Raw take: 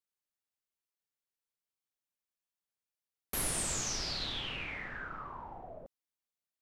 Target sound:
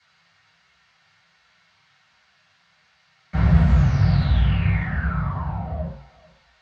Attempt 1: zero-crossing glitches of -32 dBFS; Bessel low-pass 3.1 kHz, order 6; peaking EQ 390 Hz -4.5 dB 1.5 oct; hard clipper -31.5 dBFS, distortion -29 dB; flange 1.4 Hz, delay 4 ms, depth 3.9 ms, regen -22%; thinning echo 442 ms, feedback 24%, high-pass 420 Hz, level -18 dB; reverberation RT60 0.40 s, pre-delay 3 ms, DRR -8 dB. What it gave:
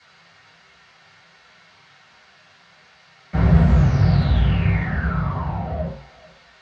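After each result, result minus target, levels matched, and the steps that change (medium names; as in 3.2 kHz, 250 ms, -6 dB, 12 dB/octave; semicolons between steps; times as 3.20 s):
zero-crossing glitches: distortion +7 dB; 500 Hz band +4.5 dB
change: zero-crossing glitches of -40 dBFS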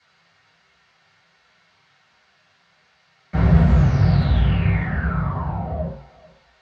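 500 Hz band +4.5 dB
change: peaking EQ 390 Hz -14 dB 1.5 oct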